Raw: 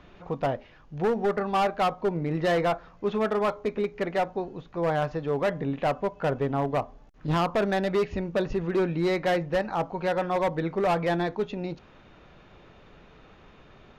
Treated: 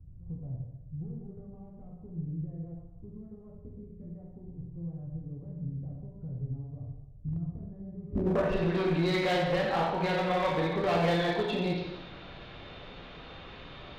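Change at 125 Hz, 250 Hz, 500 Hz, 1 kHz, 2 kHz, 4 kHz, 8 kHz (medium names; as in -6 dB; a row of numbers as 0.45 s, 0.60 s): -1.0 dB, -4.0 dB, -6.5 dB, -7.0 dB, -3.5 dB, 0.0 dB, no reading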